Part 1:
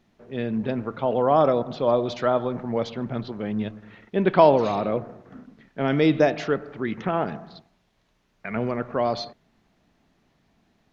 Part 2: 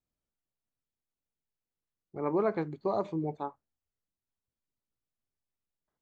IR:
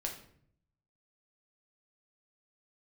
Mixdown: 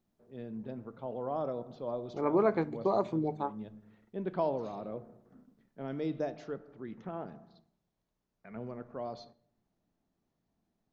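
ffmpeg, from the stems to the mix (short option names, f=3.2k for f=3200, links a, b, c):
-filter_complex "[0:a]equalizer=f=2.4k:w=0.69:g=-9.5,volume=-16dB,asplit=2[a][b];[b]volume=-13dB[c];[1:a]volume=0.5dB,asplit=3[d][e][f];[e]volume=-15.5dB[g];[f]apad=whole_len=481953[h];[a][h]sidechaincompress=threshold=-36dB:ratio=8:attack=16:release=225[i];[2:a]atrim=start_sample=2205[j];[c][g]amix=inputs=2:normalize=0[k];[k][j]afir=irnorm=-1:irlink=0[l];[i][d][l]amix=inputs=3:normalize=0,bandreject=f=50:t=h:w=6,bandreject=f=100:t=h:w=6,bandreject=f=150:t=h:w=6"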